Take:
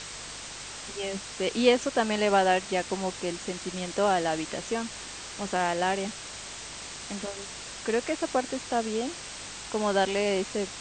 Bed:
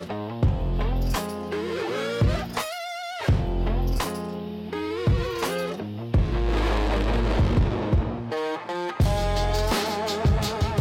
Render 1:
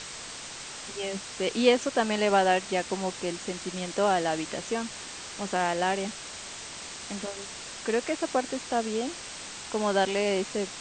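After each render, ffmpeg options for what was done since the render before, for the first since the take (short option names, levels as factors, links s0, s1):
-af "bandreject=f=50:t=h:w=4,bandreject=f=100:t=h:w=4,bandreject=f=150:t=h:w=4"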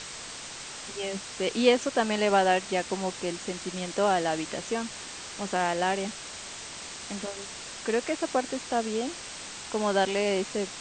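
-af anull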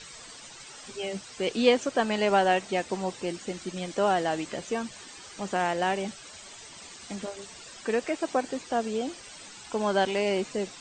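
-af "afftdn=nr=12:nf=-41"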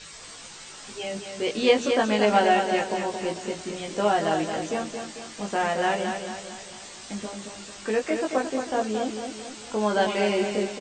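-filter_complex "[0:a]asplit=2[s0][s1];[s1]adelay=19,volume=0.75[s2];[s0][s2]amix=inputs=2:normalize=0,asplit=2[s3][s4];[s4]aecho=0:1:223|446|669|892|1115|1338:0.473|0.227|0.109|0.0523|0.0251|0.0121[s5];[s3][s5]amix=inputs=2:normalize=0"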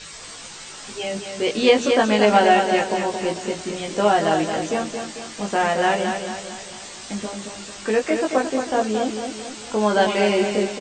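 -af "volume=1.78,alimiter=limit=0.708:level=0:latency=1"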